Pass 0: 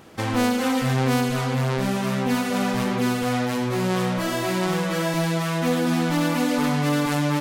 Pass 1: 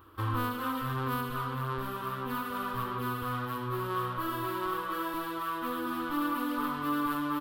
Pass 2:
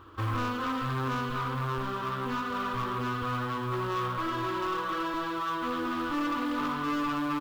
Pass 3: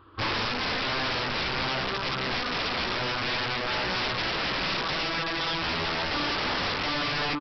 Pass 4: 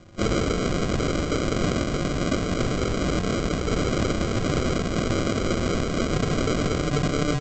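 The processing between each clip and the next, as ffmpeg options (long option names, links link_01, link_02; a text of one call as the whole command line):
ffmpeg -i in.wav -af "firequalizer=gain_entry='entry(110,0);entry(160,-29);entry(300,-5);entry(500,-14);entry(730,-19);entry(1100,4);entry(2100,-18);entry(3100,-9);entry(6300,-26);entry(13000,-1)':delay=0.05:min_phase=1,volume=-1.5dB" out.wav
ffmpeg -i in.wav -af "aresample=16000,asoftclip=type=tanh:threshold=-31dB,aresample=44100,acrusher=bits=7:mode=log:mix=0:aa=0.000001,volume=5dB" out.wav
ffmpeg -i in.wav -af "dynaudnorm=framelen=120:gausssize=3:maxgain=7dB,aresample=11025,aeval=exprs='(mod(11.9*val(0)+1,2)-1)/11.9':channel_layout=same,aresample=44100,volume=-3.5dB" out.wav
ffmpeg -i in.wav -af "afreqshift=-430,aresample=16000,acrusher=samples=18:mix=1:aa=0.000001,aresample=44100,volume=5dB" out.wav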